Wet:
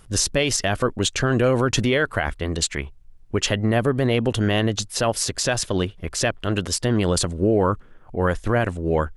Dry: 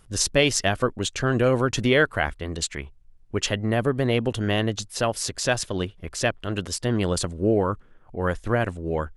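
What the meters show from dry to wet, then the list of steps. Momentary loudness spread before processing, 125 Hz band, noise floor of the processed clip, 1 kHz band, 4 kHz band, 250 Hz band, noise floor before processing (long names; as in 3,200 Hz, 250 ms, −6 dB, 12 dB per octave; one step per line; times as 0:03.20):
10 LU, +3.0 dB, −47 dBFS, +2.5 dB, +2.5 dB, +3.0 dB, −52 dBFS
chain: brickwall limiter −15.5 dBFS, peak gain reduction 9.5 dB
level +5.5 dB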